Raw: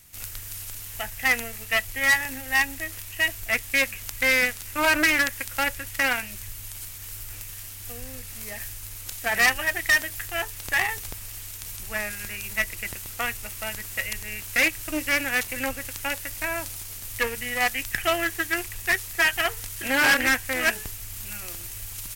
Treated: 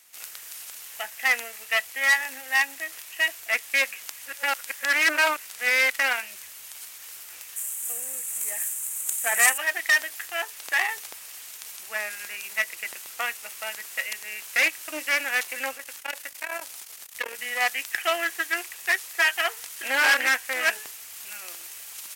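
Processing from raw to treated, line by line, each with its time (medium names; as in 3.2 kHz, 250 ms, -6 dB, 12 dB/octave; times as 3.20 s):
4.19–5.93 s: reverse
7.56–9.58 s: resonant high shelf 6.3 kHz +9 dB, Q 3
15.76–17.39 s: transformer saturation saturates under 800 Hz
whole clip: high-pass 560 Hz 12 dB/octave; treble shelf 11 kHz -6 dB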